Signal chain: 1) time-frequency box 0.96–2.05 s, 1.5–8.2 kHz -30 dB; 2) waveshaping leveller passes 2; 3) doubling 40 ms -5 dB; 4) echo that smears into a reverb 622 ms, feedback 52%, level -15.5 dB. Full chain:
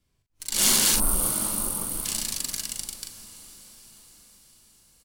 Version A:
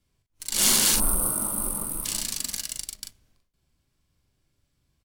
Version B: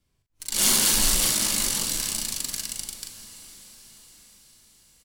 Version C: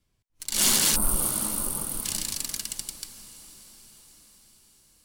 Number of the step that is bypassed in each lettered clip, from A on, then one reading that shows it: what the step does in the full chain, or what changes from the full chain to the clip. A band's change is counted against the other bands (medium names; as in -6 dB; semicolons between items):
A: 4, echo-to-direct -14.0 dB to none; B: 1, 4 kHz band +3.0 dB; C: 3, momentary loudness spread change -1 LU